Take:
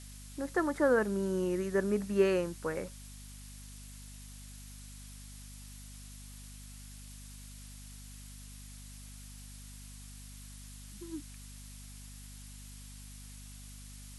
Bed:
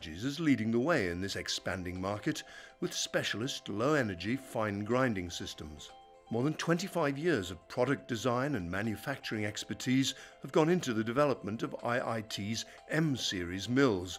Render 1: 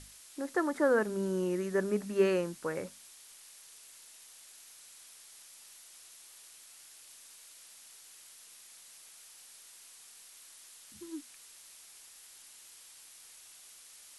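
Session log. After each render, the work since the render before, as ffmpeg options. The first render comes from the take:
-af "bandreject=f=50:t=h:w=6,bandreject=f=100:t=h:w=6,bandreject=f=150:t=h:w=6,bandreject=f=200:t=h:w=6,bandreject=f=250:t=h:w=6"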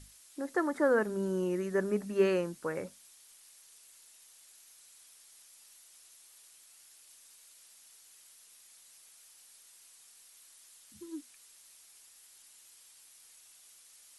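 -af "afftdn=nr=6:nf=-55"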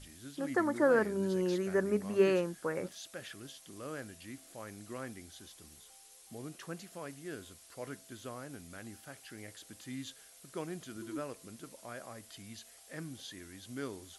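-filter_complex "[1:a]volume=-13.5dB[a];[0:a][a]amix=inputs=2:normalize=0"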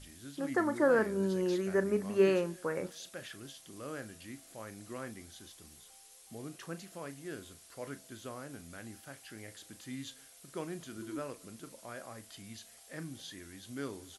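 -filter_complex "[0:a]asplit=2[a][b];[b]adelay=36,volume=-13dB[c];[a][c]amix=inputs=2:normalize=0,asplit=2[d][e];[e]adelay=227.4,volume=-28dB,highshelf=f=4k:g=-5.12[f];[d][f]amix=inputs=2:normalize=0"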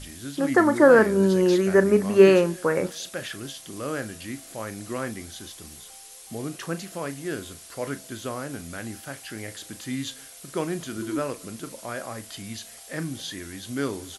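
-af "volume=12dB"

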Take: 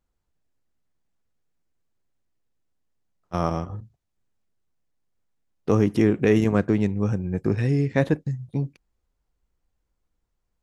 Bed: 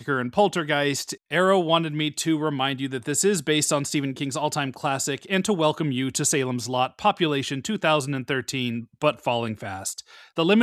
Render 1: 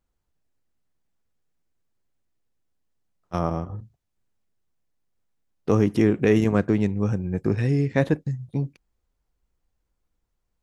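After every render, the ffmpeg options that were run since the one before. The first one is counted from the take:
-filter_complex "[0:a]asplit=3[a][b][c];[a]afade=t=out:st=3.38:d=0.02[d];[b]equalizer=f=5.1k:w=0.36:g=-8.5,afade=t=in:st=3.38:d=0.02,afade=t=out:st=3.78:d=0.02[e];[c]afade=t=in:st=3.78:d=0.02[f];[d][e][f]amix=inputs=3:normalize=0"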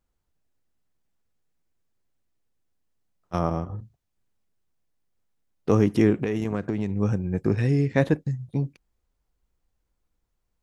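-filter_complex "[0:a]asettb=1/sr,asplit=3[a][b][c];[a]atrim=end=6.204[d];[b]atrim=start=6.2:end=6.96,asetpts=PTS-STARTPTS,afade=t=in:d=0.004:c=qsin,afade=t=out:st=0.756:d=0.004:c=qsin,acompressor=threshold=-21dB:ratio=10:attack=3.2:release=140:knee=1:detection=peak[e];[c]atrim=start=6.956[f];[d][e]acrossfade=d=0.004:c1=hsin:c2=qsin[g];[g][f]acrossfade=d=0.004:c1=qsin:c2=hsin"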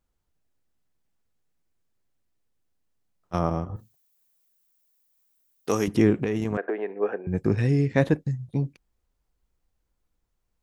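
-filter_complex "[0:a]asettb=1/sr,asplit=3[a][b][c];[a]atrim=end=3.764[d];[b]atrim=start=3.76:end=5.88,asetpts=PTS-STARTPTS,afade=t=in:d=0.004:c=qsin,afade=t=out:st=2.116:d=0.004:c=qsin,aemphasis=mode=production:type=riaa[e];[c]atrim=start=5.876[f];[d][e]acrossfade=d=0.004:c1=hsin:c2=qsin[g];[g][f]acrossfade=d=0.004:c1=qsin:c2=hsin,asettb=1/sr,asplit=3[h][i][j];[h]atrim=end=6.574[k];[i]atrim=start=6.57:end=7.27,asetpts=PTS-STARTPTS,afade=t=in:d=0.004:c=qsin,afade=t=out:st=0.696:d=0.004:c=qsin,highpass=f=350:w=0.5412,highpass=f=350:w=1.3066,equalizer=f=430:t=q:w=4:g=8,equalizer=f=690:t=q:w=4:g=8,equalizer=f=1.7k:t=q:w=4:g=10,lowpass=f=2.7k:w=0.5412,lowpass=f=2.7k:w=1.3066[l];[j]atrim=start=7.266[m];[k][l]acrossfade=d=0.004:c1=hsin:c2=qsin[n];[n][m]acrossfade=d=0.004:c1=qsin:c2=hsin"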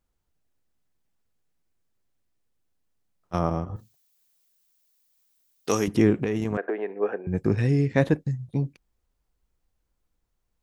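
-filter_complex "[0:a]asettb=1/sr,asplit=3[a][b][c];[a]atrim=end=3.674[d];[b]atrim=start=3.67:end=5.8,asetpts=PTS-STARTPTS,afade=t=in:d=0.004:c=qsin,afade=t=out:st=2.126:d=0.004:c=qsin,equalizer=f=4.4k:w=0.59:g=6[e];[c]atrim=start=5.796[f];[d][e]acrossfade=d=0.004:c1=hsin:c2=qsin[g];[g][f]acrossfade=d=0.004:c1=qsin:c2=hsin"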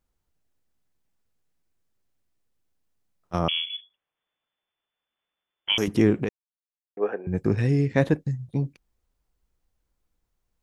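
-filter_complex "[0:a]asettb=1/sr,asplit=3[a][b][c];[a]atrim=end=3.484[d];[b]atrim=start=3.48:end=5.78,asetpts=PTS-STARTPTS,afade=t=in:d=0.004:c=qsin,afade=t=out:st=2.296:d=0.004:c=qsin,lowpass=f=3k:t=q:w=0.5098,lowpass=f=3k:t=q:w=0.6013,lowpass=f=3k:t=q:w=0.9,lowpass=f=3k:t=q:w=2.563,afreqshift=-3500[e];[c]atrim=start=5.776[f];[d][e]acrossfade=d=0.004:c1=hsin:c2=qsin[g];[g][f]acrossfade=d=0.004:c1=qsin:c2=hsin,asplit=3[h][i][j];[h]atrim=end=6.29,asetpts=PTS-STARTPTS,afade=t=out:st=6.286:d=0.004:c=hsin[k];[i]atrim=start=6.29:end=6.97,asetpts=PTS-STARTPTS,volume=0[l];[j]atrim=start=6.97,asetpts=PTS-STARTPTS,afade=t=in:d=0.004:c=hsin[m];[k][l][m]concat=n=3:v=0:a=1"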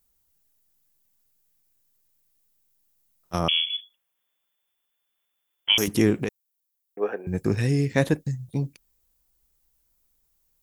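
-af "aemphasis=mode=production:type=75fm"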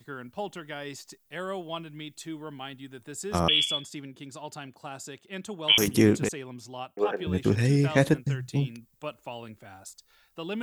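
-filter_complex "[1:a]volume=-15dB[a];[0:a][a]amix=inputs=2:normalize=0"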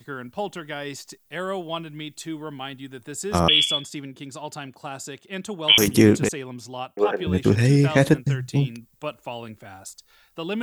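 -af "volume=5.5dB,alimiter=limit=-3dB:level=0:latency=1"

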